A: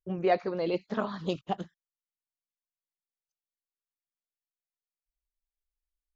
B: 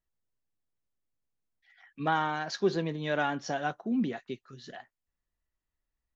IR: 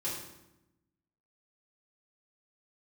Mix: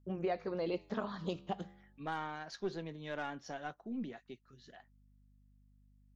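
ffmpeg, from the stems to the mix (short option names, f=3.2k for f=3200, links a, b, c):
-filter_complex "[0:a]acompressor=threshold=-28dB:ratio=5,flanger=delay=8.2:depth=4.9:regen=-89:speed=0.33:shape=sinusoidal,aeval=exprs='val(0)+0.000562*(sin(2*PI*50*n/s)+sin(2*PI*2*50*n/s)/2+sin(2*PI*3*50*n/s)/3+sin(2*PI*4*50*n/s)/4+sin(2*PI*5*50*n/s)/5)':c=same,volume=0.5dB[a];[1:a]aeval=exprs='0.2*(cos(1*acos(clip(val(0)/0.2,-1,1)))-cos(1*PI/2))+0.0141*(cos(6*acos(clip(val(0)/0.2,-1,1)))-cos(6*PI/2))+0.00501*(cos(8*acos(clip(val(0)/0.2,-1,1)))-cos(8*PI/2))':c=same,volume=-11.5dB,asplit=2[b][c];[c]apad=whole_len=271341[d];[a][d]sidechaincompress=threshold=-59dB:ratio=8:attack=16:release=211[e];[e][b]amix=inputs=2:normalize=0"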